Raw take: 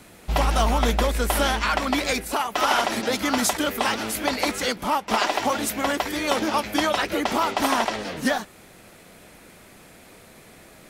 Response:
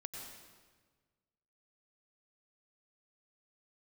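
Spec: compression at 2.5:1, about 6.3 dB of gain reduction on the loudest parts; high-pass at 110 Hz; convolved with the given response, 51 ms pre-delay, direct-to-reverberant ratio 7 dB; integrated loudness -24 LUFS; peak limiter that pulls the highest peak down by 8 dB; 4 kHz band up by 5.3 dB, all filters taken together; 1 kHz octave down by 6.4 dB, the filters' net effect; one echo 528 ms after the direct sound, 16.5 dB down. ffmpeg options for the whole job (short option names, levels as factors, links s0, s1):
-filter_complex "[0:a]highpass=110,equalizer=f=1000:t=o:g=-9,equalizer=f=4000:t=o:g=7.5,acompressor=threshold=0.0398:ratio=2.5,alimiter=limit=0.0944:level=0:latency=1,aecho=1:1:528:0.15,asplit=2[s0][s1];[1:a]atrim=start_sample=2205,adelay=51[s2];[s1][s2]afir=irnorm=-1:irlink=0,volume=0.596[s3];[s0][s3]amix=inputs=2:normalize=0,volume=1.88"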